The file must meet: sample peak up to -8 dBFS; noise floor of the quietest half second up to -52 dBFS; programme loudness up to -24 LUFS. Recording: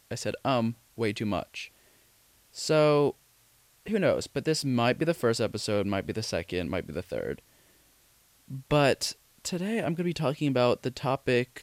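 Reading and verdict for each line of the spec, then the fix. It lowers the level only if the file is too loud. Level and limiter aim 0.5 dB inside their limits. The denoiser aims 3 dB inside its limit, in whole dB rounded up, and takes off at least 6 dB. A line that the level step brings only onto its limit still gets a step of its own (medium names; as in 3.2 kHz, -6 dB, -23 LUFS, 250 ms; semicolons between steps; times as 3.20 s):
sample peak -11.5 dBFS: pass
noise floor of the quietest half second -63 dBFS: pass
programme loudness -28.5 LUFS: pass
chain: none needed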